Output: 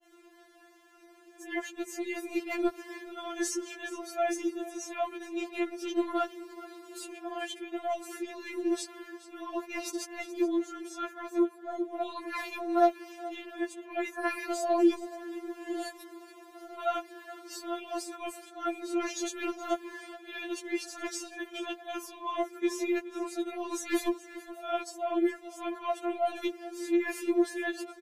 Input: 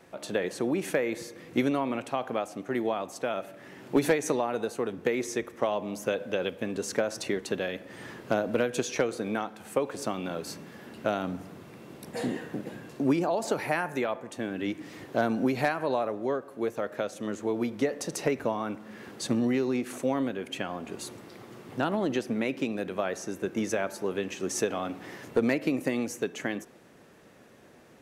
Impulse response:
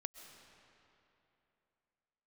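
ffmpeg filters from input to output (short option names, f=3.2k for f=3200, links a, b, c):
-filter_complex "[0:a]areverse,asplit=2[a][b];[b]aecho=0:1:423:0.141[c];[a][c]amix=inputs=2:normalize=0,aeval=exprs='0.211*(cos(1*acos(clip(val(0)/0.211,-1,1)))-cos(1*PI/2))+0.00168*(cos(4*acos(clip(val(0)/0.211,-1,1)))-cos(4*PI/2))':c=same,afftfilt=real='re*4*eq(mod(b,16),0)':imag='im*4*eq(mod(b,16),0)':win_size=2048:overlap=0.75"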